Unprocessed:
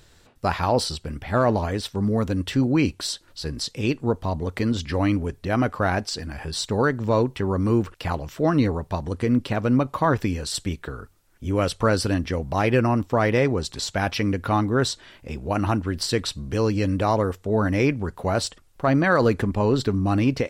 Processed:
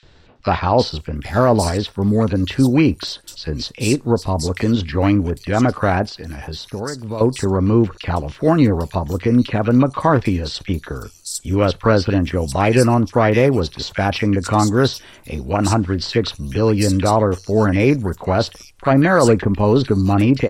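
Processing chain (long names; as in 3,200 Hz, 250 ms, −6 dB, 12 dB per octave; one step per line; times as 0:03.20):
0:06.02–0:07.18: downward compressor 3 to 1, threshold −33 dBFS, peak gain reduction 12.5 dB
three-band delay without the direct sound mids, lows, highs 30/800 ms, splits 1,600/5,100 Hz
level +6.5 dB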